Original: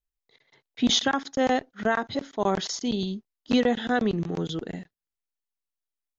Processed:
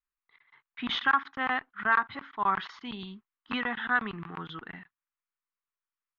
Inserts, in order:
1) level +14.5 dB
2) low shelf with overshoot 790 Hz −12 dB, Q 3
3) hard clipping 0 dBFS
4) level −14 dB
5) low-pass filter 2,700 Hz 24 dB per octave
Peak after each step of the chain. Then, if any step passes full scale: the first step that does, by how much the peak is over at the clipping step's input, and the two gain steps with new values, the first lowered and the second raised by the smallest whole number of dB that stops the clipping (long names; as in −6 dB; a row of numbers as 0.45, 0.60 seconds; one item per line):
+4.0, +4.5, 0.0, −14.0, −13.0 dBFS
step 1, 4.5 dB
step 1 +9.5 dB, step 4 −9 dB